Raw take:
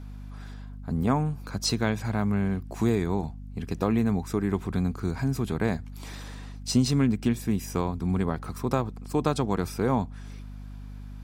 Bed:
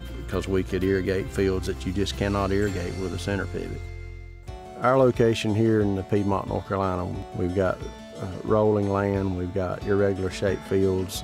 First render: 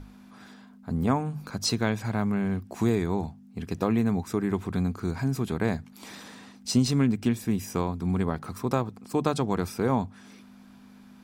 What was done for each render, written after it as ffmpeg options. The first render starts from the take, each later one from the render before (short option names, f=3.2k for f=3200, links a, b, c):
-af "bandreject=f=50:t=h:w=6,bandreject=f=100:t=h:w=6,bandreject=f=150:t=h:w=6"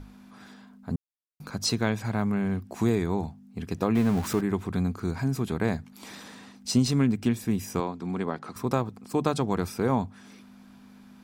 -filter_complex "[0:a]asettb=1/sr,asplit=3[a][b][c];[a]atrim=end=3.954[d];[b]atrim=start=3.95:end=4.41,asetpts=PTS-STARTPTS,afade=t=in:d=0.004:c=qsin,afade=t=out:st=0.456:d=0.004:c=qsin,aeval=exprs='val(0)+0.5*0.0282*sgn(val(0))':c=same[e];[c]atrim=start=4.406[f];[d][e]acrossfade=d=0.004:c1=hsin:c2=qsin[g];[g][f]acrossfade=d=0.004:c1=qsin:c2=hsin,asettb=1/sr,asplit=3[h][i][j];[h]atrim=end=7.804[k];[i]atrim=start=7.8:end=8.56,asetpts=PTS-STARTPTS,afade=t=in:d=0.004:c=qsin,afade=t=out:st=0.756:d=0.004:c=qsin,highpass=220,lowpass=6.8k[l];[j]atrim=start=8.556[m];[k][l]acrossfade=d=0.004:c1=hsin:c2=qsin[n];[n][m]acrossfade=d=0.004:c1=qsin:c2=hsin,asplit=3[o][p][q];[o]atrim=end=0.96,asetpts=PTS-STARTPTS,afade=t=out:st=0.956:d=0.004:c=hsin[r];[p]atrim=start=0.96:end=1.4,asetpts=PTS-STARTPTS,volume=0[s];[q]atrim=start=1.4,asetpts=PTS-STARTPTS,afade=t=in:d=0.004:c=hsin[t];[r][s][t]concat=n=3:v=0:a=1"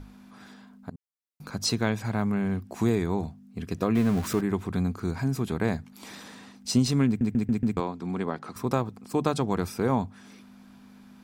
-filter_complex "[0:a]asettb=1/sr,asplit=3[a][b][c];[a]atrim=end=3.194[d];[b]atrim=start=3.19:end=4.36,asetpts=PTS-STARTPTS,afade=t=in:d=0.004:c=qsin,afade=t=out:st=1.166:d=0.004:c=qsin,bandreject=f=850:w=6.4[e];[c]atrim=start=4.356[f];[d][e]acrossfade=d=0.004:c1=hsin:c2=qsin[g];[g][f]acrossfade=d=0.004:c1=qsin:c2=hsin,asplit=7[h][i][j][k][l][m][n];[h]atrim=end=0.9,asetpts=PTS-STARTPTS,afade=t=out:st=0.896:d=0.004:c=hsin:silence=0.0794328[o];[i]atrim=start=0.9:end=7.212,asetpts=PTS-STARTPTS,afade=t=in:d=0.6:silence=0.0794328[p];[j]atrim=start=7.068:end=7.212[q];[k]atrim=start=7.068:end=7.212[r];[l]atrim=start=7.068:end=7.212[s];[m]atrim=start=7.068:end=7.212[t];[n]atrim=start=7.768[u];[o][p]concat=n=2:v=0:a=1[v];[v][q]acrossfade=d=0.004:c1=hsin:c2=hsin[w];[w][r]acrossfade=d=0.004:c1=hsin:c2=hsin[x];[x][s]acrossfade=d=0.004:c1=hsin:c2=hsin[y];[y][t]acrossfade=d=0.004:c1=hsin:c2=hsin[z];[z][u]acrossfade=d=0.004:c1=hsin:c2=hsin"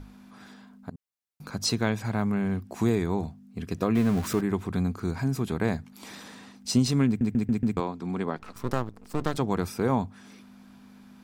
-filter_complex "[0:a]asettb=1/sr,asplit=3[a][b][c];[a]atrim=end=8.374[d];[b]atrim=start=8.37:end=9.38,asetpts=PTS-STARTPTS,afade=t=in:d=0.004:c=qsin,afade=t=out:st=1.006:d=0.004:c=qsin,aeval=exprs='max(val(0),0)':c=same[e];[c]atrim=start=9.376[f];[d][e]acrossfade=d=0.004:c1=hsin:c2=qsin[g];[g][f]acrossfade=d=0.004:c1=qsin:c2=hsin"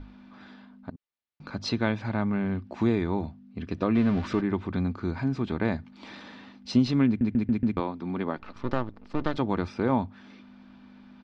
-af "lowpass=f=4.2k:w=0.5412,lowpass=f=4.2k:w=1.3066,aecho=1:1:3.4:0.3"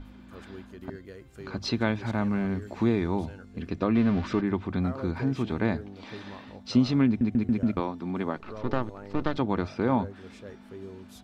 -filter_complex "[1:a]volume=-20dB[a];[0:a][a]amix=inputs=2:normalize=0"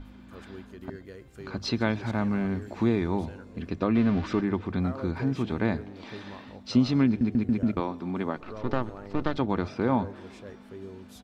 -filter_complex "[0:a]asplit=6[a][b][c][d][e][f];[b]adelay=128,afreqshift=42,volume=-23.5dB[g];[c]adelay=256,afreqshift=84,volume=-27.4dB[h];[d]adelay=384,afreqshift=126,volume=-31.3dB[i];[e]adelay=512,afreqshift=168,volume=-35.1dB[j];[f]adelay=640,afreqshift=210,volume=-39dB[k];[a][g][h][i][j][k]amix=inputs=6:normalize=0"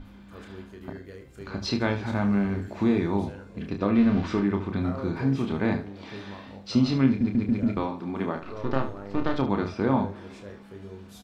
-af "aecho=1:1:30|74:0.531|0.282"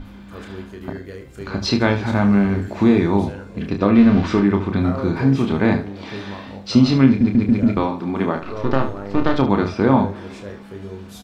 -af "volume=8.5dB,alimiter=limit=-2dB:level=0:latency=1"